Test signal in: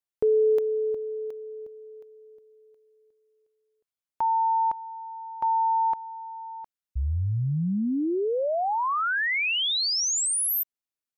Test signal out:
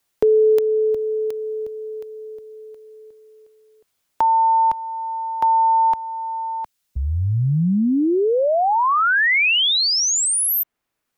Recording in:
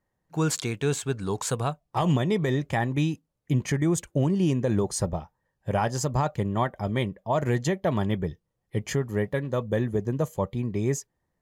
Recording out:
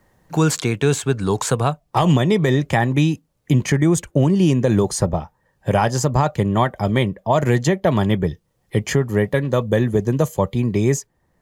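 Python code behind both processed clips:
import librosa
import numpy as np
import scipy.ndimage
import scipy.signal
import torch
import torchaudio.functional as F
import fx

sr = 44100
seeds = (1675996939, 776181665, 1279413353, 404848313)

y = fx.band_squash(x, sr, depth_pct=40)
y = y * 10.0 ** (8.0 / 20.0)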